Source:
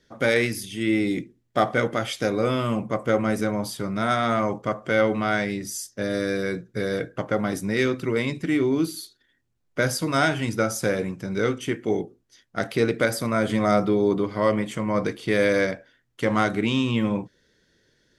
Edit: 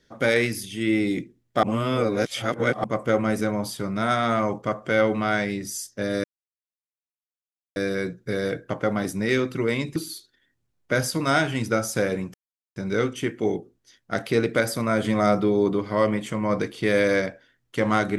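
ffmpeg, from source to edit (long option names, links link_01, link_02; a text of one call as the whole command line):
ffmpeg -i in.wav -filter_complex "[0:a]asplit=6[link_01][link_02][link_03][link_04][link_05][link_06];[link_01]atrim=end=1.632[link_07];[link_02]atrim=start=1.628:end=2.842,asetpts=PTS-STARTPTS,areverse[link_08];[link_03]atrim=start=2.838:end=6.24,asetpts=PTS-STARTPTS,afade=type=out:start_time=3.398:duration=0.004:curve=hsin,apad=pad_dur=1.52[link_09];[link_04]atrim=start=6.24:end=8.442,asetpts=PTS-STARTPTS,afade=type=in:duration=0.004:curve=hsin[link_10];[link_05]atrim=start=8.828:end=11.21,asetpts=PTS-STARTPTS,afade=type=out:start_time=2.378:duration=0.004:curve=hsin,apad=pad_dur=0.42[link_11];[link_06]atrim=start=11.21,asetpts=PTS-STARTPTS,afade=type=in:duration=0.004:curve=hsin[link_12];[link_07][link_08]acrossfade=duration=0.004:curve1=hsin:curve2=hsin[link_13];[link_09][link_10]concat=n=2:v=0:a=1[link_14];[link_13][link_14]acrossfade=duration=0.004:curve1=hsin:curve2=hsin[link_15];[link_11][link_12]concat=n=2:v=0:a=1[link_16];[link_15][link_16]acrossfade=duration=0.004:curve1=hsin:curve2=hsin" out.wav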